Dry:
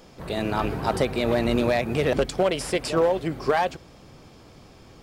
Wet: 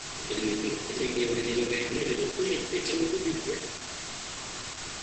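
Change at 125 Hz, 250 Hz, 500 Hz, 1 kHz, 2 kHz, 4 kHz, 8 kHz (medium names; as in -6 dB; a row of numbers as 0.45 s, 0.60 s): -11.0 dB, -3.5 dB, -7.5 dB, -13.5 dB, -3.0 dB, +1.5 dB, +6.0 dB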